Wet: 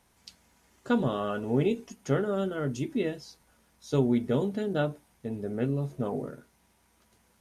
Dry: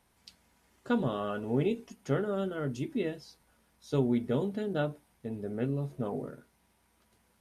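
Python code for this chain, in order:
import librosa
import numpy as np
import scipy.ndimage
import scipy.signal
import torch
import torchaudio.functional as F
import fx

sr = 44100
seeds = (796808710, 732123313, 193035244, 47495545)

y = fx.peak_eq(x, sr, hz=6500.0, db=4.5, octaves=0.48)
y = F.gain(torch.from_numpy(y), 3.0).numpy()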